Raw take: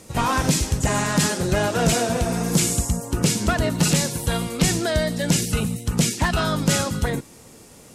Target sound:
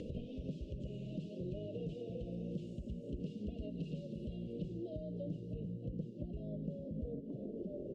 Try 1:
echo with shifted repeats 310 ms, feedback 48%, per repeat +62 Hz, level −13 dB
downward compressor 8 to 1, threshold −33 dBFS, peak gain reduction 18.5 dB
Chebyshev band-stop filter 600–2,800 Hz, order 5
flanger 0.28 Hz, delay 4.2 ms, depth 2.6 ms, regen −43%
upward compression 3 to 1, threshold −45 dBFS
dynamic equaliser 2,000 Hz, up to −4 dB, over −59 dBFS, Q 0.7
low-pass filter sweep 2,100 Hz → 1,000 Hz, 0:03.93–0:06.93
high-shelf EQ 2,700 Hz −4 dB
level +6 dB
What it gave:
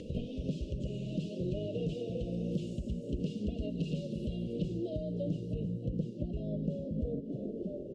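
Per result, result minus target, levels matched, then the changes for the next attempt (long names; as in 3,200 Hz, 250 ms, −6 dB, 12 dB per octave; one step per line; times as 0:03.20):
downward compressor: peak gain reduction −7.5 dB; 4,000 Hz band +3.5 dB
change: downward compressor 8 to 1, threshold −41.5 dBFS, peak gain reduction 26 dB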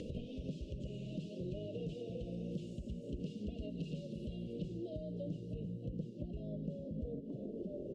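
4,000 Hz band +4.0 dB
change: high-shelf EQ 2,700 Hz −11 dB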